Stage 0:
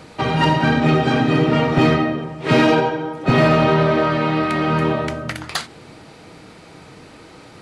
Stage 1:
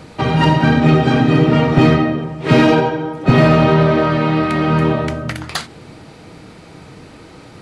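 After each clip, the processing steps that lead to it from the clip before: low shelf 270 Hz +6 dB; gain +1 dB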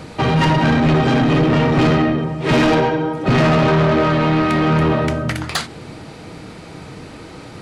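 soft clip -14.5 dBFS, distortion -9 dB; gain +3.5 dB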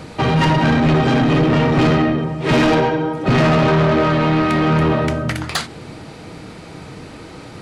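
nothing audible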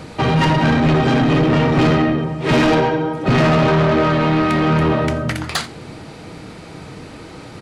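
echo 86 ms -21.5 dB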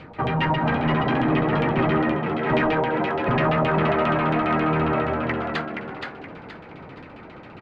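LFO low-pass saw down 7.4 Hz 700–3100 Hz; frequency-shifting echo 0.473 s, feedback 33%, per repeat +76 Hz, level -5 dB; gain -9 dB

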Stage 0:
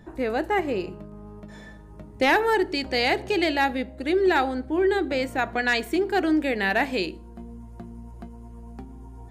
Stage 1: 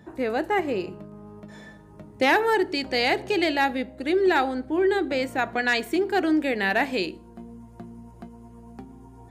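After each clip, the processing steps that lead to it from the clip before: HPF 97 Hz 12 dB/oct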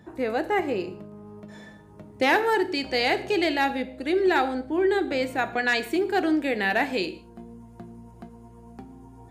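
non-linear reverb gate 0.2 s falling, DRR 11.5 dB; gain -1 dB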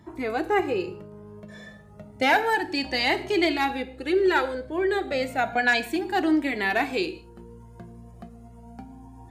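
cascading flanger rising 0.31 Hz; gain +5 dB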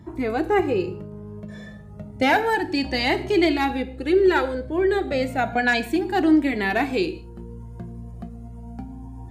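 low shelf 310 Hz +10.5 dB

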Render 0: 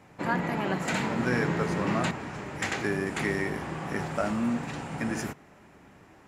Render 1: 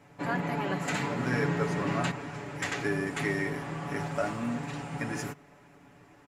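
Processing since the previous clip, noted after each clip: comb 7 ms, depth 67%; gain -3.5 dB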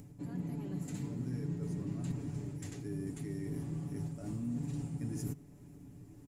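reverse; compressor 6:1, threshold -37 dBFS, peak gain reduction 13 dB; reverse; EQ curve 100 Hz 0 dB, 160 Hz -5 dB, 310 Hz -7 dB, 570 Hz -21 dB, 1400 Hz -29 dB, 2800 Hz -24 dB, 10000 Hz -6 dB; upward compressor, threshold -57 dBFS; gain +9 dB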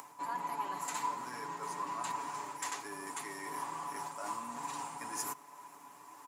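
resonant high-pass 1000 Hz, resonance Q 11; gain +11 dB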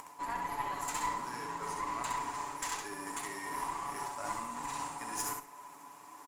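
tube stage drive 28 dB, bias 0.7; feedback echo 66 ms, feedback 22%, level -4.5 dB; gain +4.5 dB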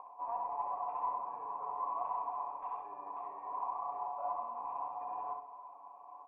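vocal tract filter a; small resonant body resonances 500/2700 Hz, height 12 dB, ringing for 35 ms; reverb RT60 0.85 s, pre-delay 0.109 s, DRR 14.5 dB; gain +8 dB

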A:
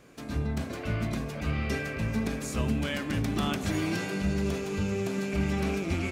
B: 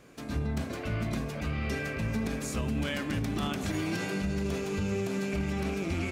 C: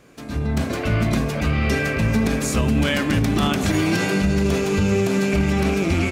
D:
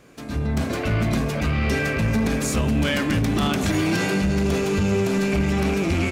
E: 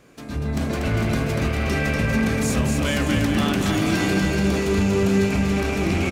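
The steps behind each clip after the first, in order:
limiter -22.5 dBFS, peak gain reduction 5.5 dB
AGC gain up to 8 dB; gain +4 dB
soft clip -14 dBFS, distortion -18 dB
bouncing-ball echo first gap 0.24 s, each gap 0.8×, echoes 5; gain -1.5 dB

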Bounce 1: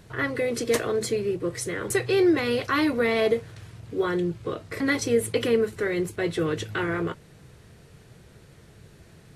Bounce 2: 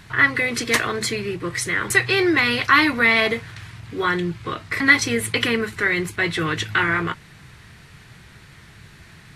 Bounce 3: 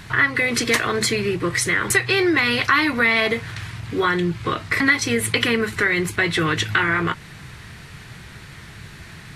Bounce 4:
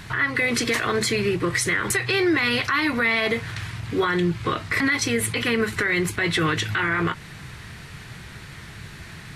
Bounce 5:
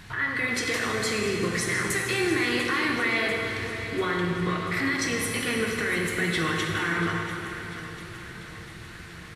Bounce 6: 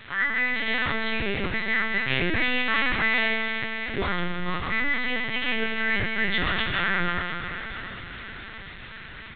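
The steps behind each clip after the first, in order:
ten-band EQ 500 Hz -10 dB, 1000 Hz +5 dB, 2000 Hz +8 dB, 4000 Hz +4 dB; gain +4.5 dB
compressor 2.5:1, threshold -24 dBFS, peak gain reduction 10.5 dB; gain +6 dB
limiter -13 dBFS, peak gain reduction 9.5 dB
feedback echo 0.692 s, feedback 58%, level -13.5 dB; plate-style reverb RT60 3 s, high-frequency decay 0.85×, DRR -0.5 dB; gain -7 dB
frequency quantiser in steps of 2 st; LPC vocoder at 8 kHz pitch kept

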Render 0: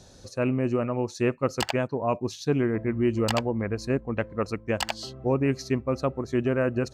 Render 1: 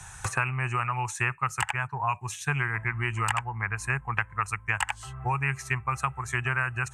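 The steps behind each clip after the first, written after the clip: gate with hold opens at -38 dBFS; EQ curve 140 Hz 0 dB, 270 Hz -27 dB, 390 Hz -16 dB, 560 Hz -23 dB, 820 Hz +6 dB, 1600 Hz +10 dB, 2600 Hz +8 dB, 4500 Hz -14 dB, 8500 Hz +14 dB, 15000 Hz -2 dB; three-band squash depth 100%; gain -2 dB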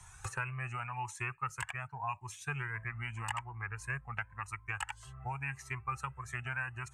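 cascading flanger rising 0.88 Hz; gain -6.5 dB

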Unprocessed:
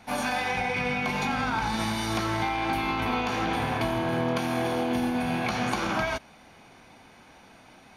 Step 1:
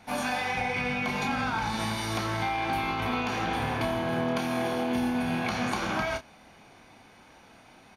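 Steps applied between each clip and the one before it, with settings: doubler 29 ms -8.5 dB; gain -2 dB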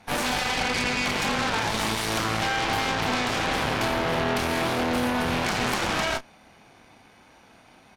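added harmonics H 8 -9 dB, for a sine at -15.5 dBFS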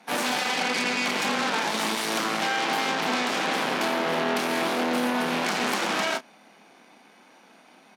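steep high-pass 180 Hz 36 dB/oct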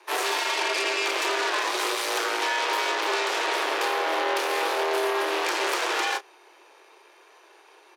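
frequency shift +150 Hz

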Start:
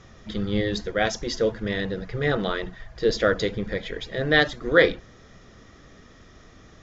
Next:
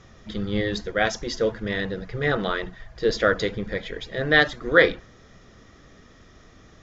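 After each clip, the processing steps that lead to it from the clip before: dynamic EQ 1400 Hz, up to +4 dB, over -34 dBFS, Q 0.78; gain -1 dB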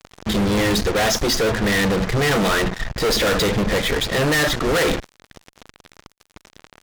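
fuzz box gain 40 dB, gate -43 dBFS; gain -3.5 dB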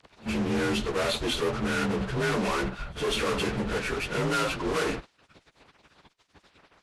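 inharmonic rescaling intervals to 87%; pre-echo 61 ms -22 dB; gain -7 dB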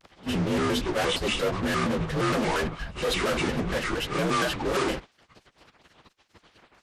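shaped vibrato square 4.3 Hz, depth 250 cents; gain +1.5 dB

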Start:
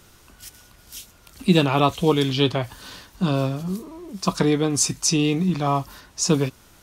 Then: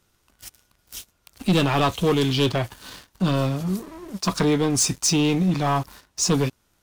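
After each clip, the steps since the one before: sample leveller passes 3; gain -9 dB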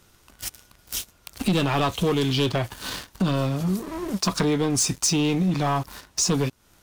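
compressor 3:1, threshold -33 dBFS, peak gain reduction 12.5 dB; gain +9 dB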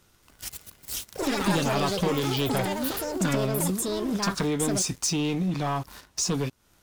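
echoes that change speed 0.227 s, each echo +6 st, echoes 3; gain -4.5 dB

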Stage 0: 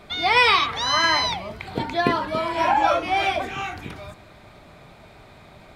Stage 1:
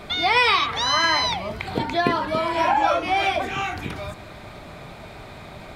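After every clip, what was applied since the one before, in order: compressor 1.5:1, threshold -38 dBFS, peak gain reduction 9.5 dB; gain +7.5 dB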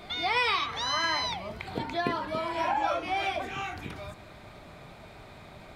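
pre-echo 0.208 s -22.5 dB; gain -8.5 dB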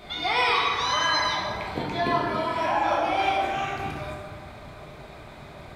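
plate-style reverb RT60 2 s, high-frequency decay 0.55×, DRR -3 dB

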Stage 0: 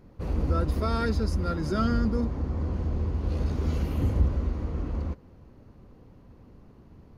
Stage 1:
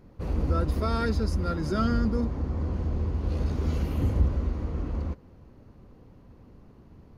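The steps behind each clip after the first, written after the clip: nothing audible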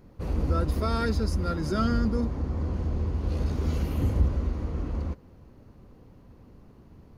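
high shelf 5900 Hz +4.5 dB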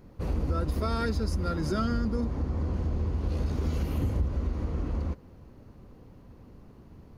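compressor 3:1, threshold -26 dBFS, peak gain reduction 7.5 dB; gain +1 dB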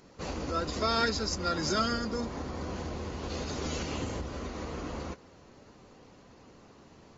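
RIAA curve recording; gain +2.5 dB; AAC 24 kbps 44100 Hz

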